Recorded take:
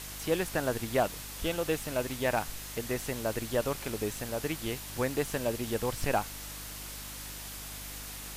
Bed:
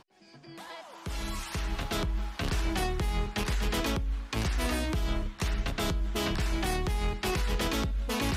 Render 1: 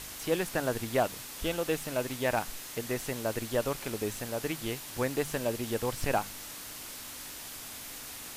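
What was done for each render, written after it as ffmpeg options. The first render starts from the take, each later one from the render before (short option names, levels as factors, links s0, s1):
-af "bandreject=f=50:t=h:w=4,bandreject=f=100:t=h:w=4,bandreject=f=150:t=h:w=4,bandreject=f=200:t=h:w=4"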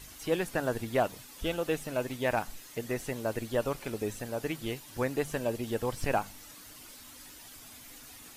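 -af "afftdn=nr=10:nf=-44"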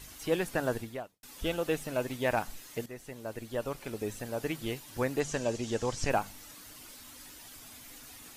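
-filter_complex "[0:a]asettb=1/sr,asplit=3[s0][s1][s2];[s0]atrim=end=5.204[s3];[s1]atrim=start=5.2:end=6.1,asetpts=PTS-STARTPTS,afade=t=in:d=0.004:c=qsin,afade=t=out:st=0.896:d=0.004:c=qsin,lowpass=f=6600:t=q:w=2.9[s4];[s2]atrim=start=6.096[s5];[s3][s4]acrossfade=d=0.004:c1=hsin:c2=qsin[s6];[s6][s5]acrossfade=d=0.004:c1=qsin:c2=hsin,asplit=3[s7][s8][s9];[s7]atrim=end=1.23,asetpts=PTS-STARTPTS,afade=t=out:st=0.74:d=0.49:c=qua[s10];[s8]atrim=start=1.23:end=2.86,asetpts=PTS-STARTPTS,afade=t=in:d=0.004:c=hsin,afade=t=out:st=1.626:d=0.004:c=hsin:silence=0.237137[s11];[s9]atrim=start=2.86,asetpts=PTS-STARTPTS,afade=t=in:d=1.58:silence=0.237137[s12];[s10][s11][s12]concat=n=3:v=0:a=1"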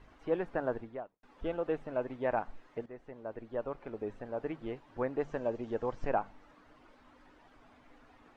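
-af "lowpass=1200,equalizer=f=99:w=0.47:g=-9"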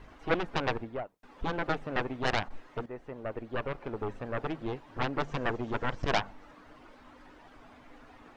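-af "aeval=exprs='0.126*(cos(1*acos(clip(val(0)/0.126,-1,1)))-cos(1*PI/2))+0.0562*(cos(7*acos(clip(val(0)/0.126,-1,1)))-cos(7*PI/2))+0.02*(cos(8*acos(clip(val(0)/0.126,-1,1)))-cos(8*PI/2))':c=same"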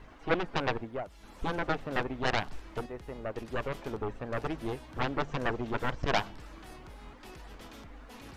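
-filter_complex "[1:a]volume=0.1[s0];[0:a][s0]amix=inputs=2:normalize=0"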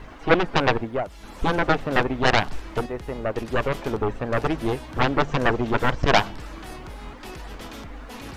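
-af "volume=3.35"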